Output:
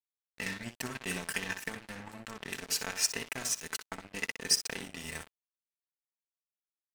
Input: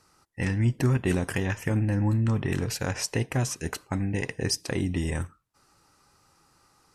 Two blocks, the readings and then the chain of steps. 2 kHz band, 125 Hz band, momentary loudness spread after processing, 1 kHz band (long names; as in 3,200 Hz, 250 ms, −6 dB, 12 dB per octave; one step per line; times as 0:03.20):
−2.5 dB, −24.5 dB, 15 LU, −6.5 dB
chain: high-pass filter 57 Hz
in parallel at −2 dB: downward compressor 5 to 1, threshold −39 dBFS, peak gain reduction 17.5 dB
on the sum: tilt shelving filter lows −8 dB, about 930 Hz
comb filter 4.5 ms, depth 66%
on a send: tape delay 62 ms, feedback 29%, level −5 dB, low-pass 4,200 Hz
on the sum: dead-zone distortion −30.5 dBFS
level −7 dB